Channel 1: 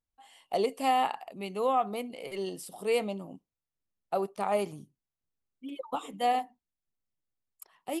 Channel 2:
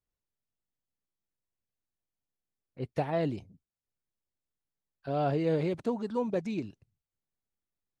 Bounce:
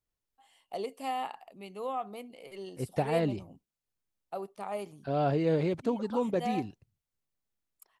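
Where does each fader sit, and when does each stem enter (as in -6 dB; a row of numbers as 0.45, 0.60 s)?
-8.0, +1.0 dB; 0.20, 0.00 s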